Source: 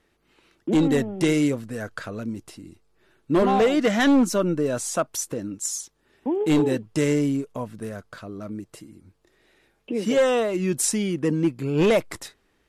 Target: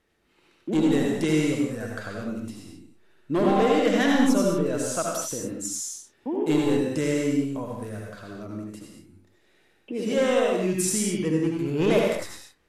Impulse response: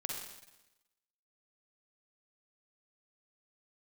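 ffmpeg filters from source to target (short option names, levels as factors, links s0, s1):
-filter_complex "[1:a]atrim=start_sample=2205,afade=t=out:st=0.21:d=0.01,atrim=end_sample=9702,asetrate=28224,aresample=44100[s0];[0:a][s0]afir=irnorm=-1:irlink=0,volume=0.596"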